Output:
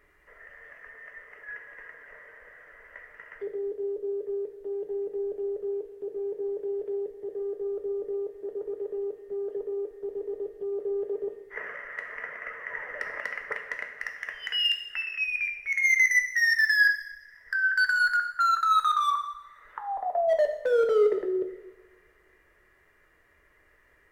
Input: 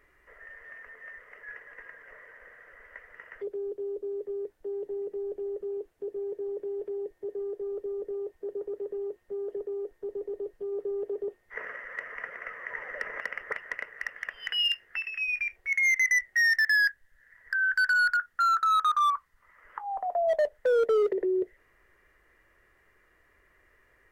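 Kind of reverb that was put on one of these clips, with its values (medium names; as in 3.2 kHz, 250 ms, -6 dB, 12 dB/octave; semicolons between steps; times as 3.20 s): two-slope reverb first 0.85 s, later 2.7 s, from -24 dB, DRR 4.5 dB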